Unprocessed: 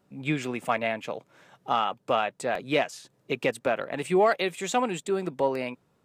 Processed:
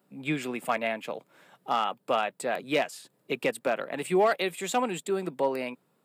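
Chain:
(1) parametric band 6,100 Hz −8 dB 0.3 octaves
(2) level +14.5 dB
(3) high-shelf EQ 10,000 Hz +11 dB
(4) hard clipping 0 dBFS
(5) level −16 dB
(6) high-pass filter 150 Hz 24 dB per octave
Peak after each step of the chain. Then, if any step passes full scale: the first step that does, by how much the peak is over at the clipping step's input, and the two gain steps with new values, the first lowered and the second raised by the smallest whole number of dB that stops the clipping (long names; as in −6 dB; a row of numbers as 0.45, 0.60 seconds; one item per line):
−11.5, +3.0, +3.0, 0.0, −16.0, −12.5 dBFS
step 2, 3.0 dB
step 2 +11.5 dB, step 5 −13 dB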